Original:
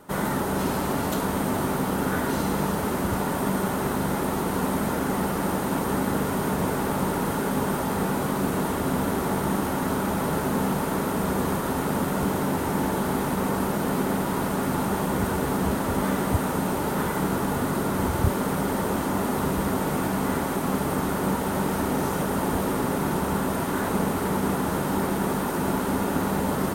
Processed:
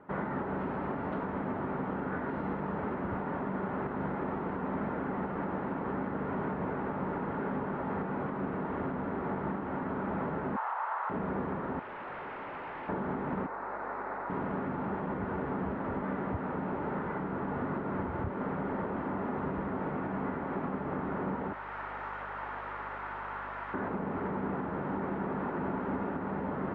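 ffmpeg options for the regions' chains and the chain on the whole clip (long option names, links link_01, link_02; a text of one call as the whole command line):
ffmpeg -i in.wav -filter_complex "[0:a]asettb=1/sr,asplit=3[link_01][link_02][link_03];[link_01]atrim=end=10.564[link_04];[link_02]atrim=start=10.56:end=11.1,asetpts=PTS-STARTPTS,afade=type=in:duration=0.004:curve=qsin,afade=type=out:start_time=0.536:duration=0.004:curve=qsin,highpass=frequency=770:width=0.5412,highpass=frequency=770:width=1.3066,equalizer=frequency=1000:width=1:gain=9,bandreject=frequency=2300:width=23[link_05];[link_03]atrim=start=11.096[link_06];[link_04][link_05]acrossfade=duration=0.004:curve1=hsin:curve2=qsin[link_07];[link_07][link_06]acrossfade=duration=0.004:curve1=qsin:curve2=hsin,asettb=1/sr,asplit=3[link_08][link_09][link_10];[link_08]atrim=end=11.794[link_11];[link_09]atrim=start=11.79:end=12.89,asetpts=PTS-STARTPTS,afade=type=in:duration=0.004:curve=qsin,afade=type=out:start_time=1.096:duration=0.004:curve=qsin,highpass=620,lowpass=6800,aeval=exprs='0.0299*(abs(mod(val(0)/0.0299+3,4)-2)-1)':channel_layout=same[link_12];[link_10]atrim=start=12.886[link_13];[link_11][link_12]acrossfade=duration=0.004:curve1=hsin:curve2=qsin[link_14];[link_14][link_13]acrossfade=duration=0.004:curve1=qsin:curve2=hsin,asettb=1/sr,asplit=3[link_15][link_16][link_17];[link_15]atrim=end=13.464[link_18];[link_16]atrim=start=13.46:end=14.3,asetpts=PTS-STARTPTS,afade=type=in:duration=0.004:curve=qsin,afade=type=out:start_time=0.836:duration=0.004:curve=qsin,highpass=710,equalizer=frequency=3100:width=2.2:gain=-12.5,aeval=exprs='val(0)+0.00316*(sin(2*PI*50*n/s)+sin(2*PI*2*50*n/s)/2+sin(2*PI*3*50*n/s)/3+sin(2*PI*4*50*n/s)/4+sin(2*PI*5*50*n/s)/5)':channel_layout=same[link_19];[link_17]atrim=start=14.296[link_20];[link_18][link_19]acrossfade=duration=0.004:curve1=hsin:curve2=qsin[link_21];[link_21][link_20]acrossfade=duration=0.004:curve1=qsin:curve2=hsin,asettb=1/sr,asplit=3[link_22][link_23][link_24];[link_22]atrim=end=21.534[link_25];[link_23]atrim=start=21.53:end=23.74,asetpts=PTS-STARTPTS,afade=type=in:duration=0.004:curve=qsin,afade=type=out:start_time=2.206:duration=0.004:curve=qsin,highpass=1100,highshelf=frequency=5500:gain=7,aeval=exprs='val(0)+0.00708*(sin(2*PI*50*n/s)+sin(2*PI*2*50*n/s)/2+sin(2*PI*3*50*n/s)/3+sin(2*PI*4*50*n/s)/4+sin(2*PI*5*50*n/s)/5)':channel_layout=same[link_26];[link_24]atrim=start=23.736[link_27];[link_25][link_26]acrossfade=duration=0.004:curve1=hsin:curve2=qsin[link_28];[link_28][link_27]acrossfade=duration=0.004:curve1=qsin:curve2=hsin,lowshelf=frequency=69:gain=-8.5,alimiter=limit=-19.5dB:level=0:latency=1:release=325,lowpass=frequency=2100:width=0.5412,lowpass=frequency=2100:width=1.3066,volume=-4.5dB" out.wav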